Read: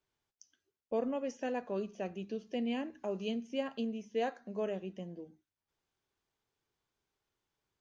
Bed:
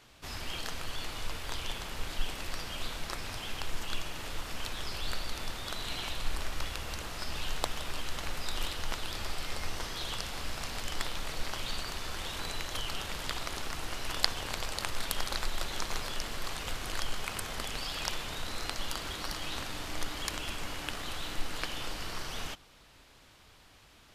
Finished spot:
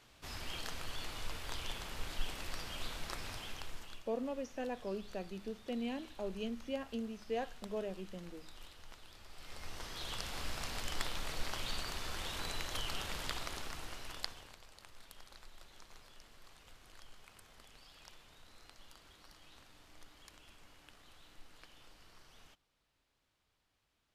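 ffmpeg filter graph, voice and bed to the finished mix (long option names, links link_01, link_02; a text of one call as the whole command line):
ffmpeg -i stem1.wav -i stem2.wav -filter_complex "[0:a]adelay=3150,volume=-4dB[link_01];[1:a]volume=11dB,afade=type=out:start_time=3.28:duration=0.75:silence=0.188365,afade=type=in:start_time=9.29:duration=1.11:silence=0.158489,afade=type=out:start_time=13.18:duration=1.4:silence=0.112202[link_02];[link_01][link_02]amix=inputs=2:normalize=0" out.wav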